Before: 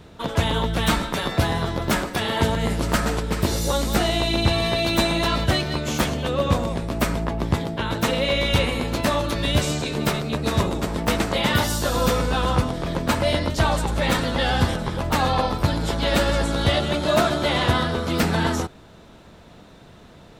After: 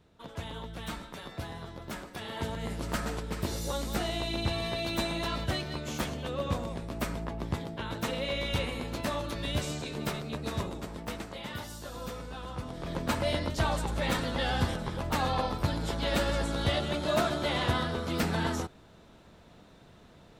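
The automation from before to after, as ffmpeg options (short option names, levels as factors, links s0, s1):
-af "volume=0.944,afade=t=in:st=1.95:d=1.04:silence=0.446684,afade=t=out:st=10.34:d=1.03:silence=0.398107,afade=t=in:st=12.56:d=0.43:silence=0.298538"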